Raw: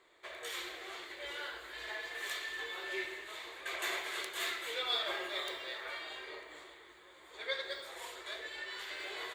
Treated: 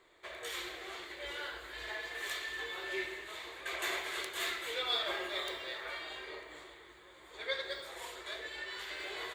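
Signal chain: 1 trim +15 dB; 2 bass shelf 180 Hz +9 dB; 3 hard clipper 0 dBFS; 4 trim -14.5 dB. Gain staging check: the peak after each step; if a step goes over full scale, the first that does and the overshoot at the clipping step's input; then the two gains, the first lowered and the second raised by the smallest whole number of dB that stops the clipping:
-5.5 dBFS, -5.5 dBFS, -5.5 dBFS, -20.0 dBFS; nothing clips

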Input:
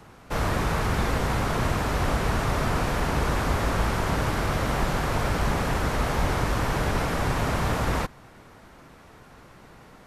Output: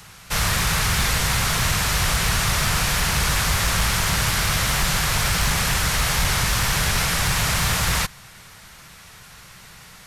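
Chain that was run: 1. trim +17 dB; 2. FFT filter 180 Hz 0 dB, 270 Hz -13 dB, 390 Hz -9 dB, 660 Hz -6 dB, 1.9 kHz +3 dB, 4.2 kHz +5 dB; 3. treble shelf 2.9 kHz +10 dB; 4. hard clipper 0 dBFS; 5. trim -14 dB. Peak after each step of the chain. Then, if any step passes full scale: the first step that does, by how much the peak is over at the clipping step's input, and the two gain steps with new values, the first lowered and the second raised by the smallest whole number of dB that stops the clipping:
+5.0 dBFS, +5.0 dBFS, +6.5 dBFS, 0.0 dBFS, -14.0 dBFS; step 1, 6.5 dB; step 1 +10 dB, step 5 -7 dB

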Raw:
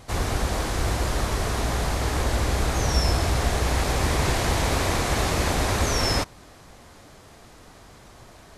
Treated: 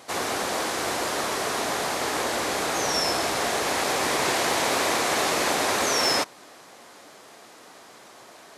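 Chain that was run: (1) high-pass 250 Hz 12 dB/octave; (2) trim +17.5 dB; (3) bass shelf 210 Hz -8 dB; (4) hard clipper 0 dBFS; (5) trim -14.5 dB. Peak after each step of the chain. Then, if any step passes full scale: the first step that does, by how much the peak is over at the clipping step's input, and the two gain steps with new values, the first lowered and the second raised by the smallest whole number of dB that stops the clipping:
-12.5 dBFS, +5.0 dBFS, +4.0 dBFS, 0.0 dBFS, -14.5 dBFS; step 2, 4.0 dB; step 2 +13.5 dB, step 5 -10.5 dB

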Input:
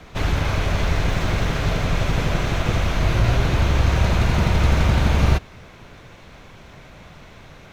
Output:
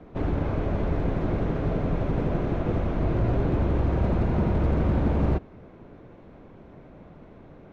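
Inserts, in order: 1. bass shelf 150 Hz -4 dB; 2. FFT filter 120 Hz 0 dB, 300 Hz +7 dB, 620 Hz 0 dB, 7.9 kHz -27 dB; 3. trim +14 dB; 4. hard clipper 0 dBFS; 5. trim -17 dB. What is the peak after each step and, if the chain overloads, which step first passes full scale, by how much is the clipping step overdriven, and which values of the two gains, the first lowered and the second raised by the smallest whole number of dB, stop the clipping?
-6.0 dBFS, -6.0 dBFS, +8.0 dBFS, 0.0 dBFS, -17.0 dBFS; step 3, 8.0 dB; step 3 +6 dB, step 5 -9 dB

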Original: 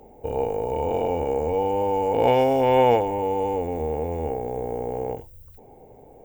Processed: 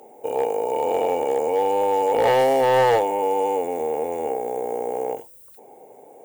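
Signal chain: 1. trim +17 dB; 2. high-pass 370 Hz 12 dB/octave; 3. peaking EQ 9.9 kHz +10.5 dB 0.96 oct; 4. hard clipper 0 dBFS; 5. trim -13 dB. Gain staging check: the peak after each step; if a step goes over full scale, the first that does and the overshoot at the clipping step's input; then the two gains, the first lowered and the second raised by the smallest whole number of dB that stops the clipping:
+10.0 dBFS, +9.5 dBFS, +9.5 dBFS, 0.0 dBFS, -13.0 dBFS; step 1, 9.5 dB; step 1 +7 dB, step 5 -3 dB

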